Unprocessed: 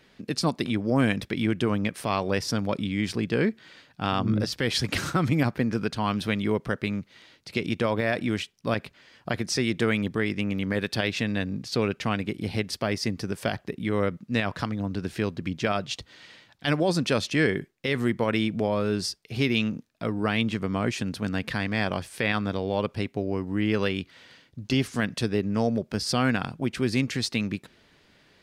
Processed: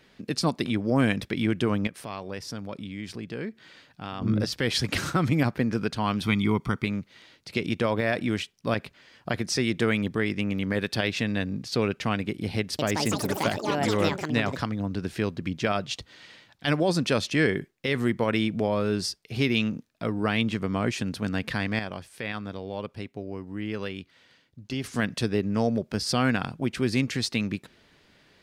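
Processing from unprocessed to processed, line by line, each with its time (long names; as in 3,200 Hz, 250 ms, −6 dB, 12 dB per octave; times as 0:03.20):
0:01.87–0:04.22: downward compressor 1.5 to 1, threshold −48 dBFS
0:06.23–0:06.85: comb filter 0.9 ms, depth 74%
0:12.58–0:15.10: delay with pitch and tempo change per echo 208 ms, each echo +6 semitones, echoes 3
0:21.79–0:24.84: clip gain −7.5 dB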